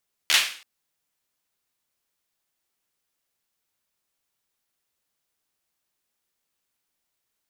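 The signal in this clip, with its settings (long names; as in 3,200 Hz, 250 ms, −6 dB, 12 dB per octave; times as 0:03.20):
synth clap length 0.33 s, apart 13 ms, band 2,700 Hz, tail 0.46 s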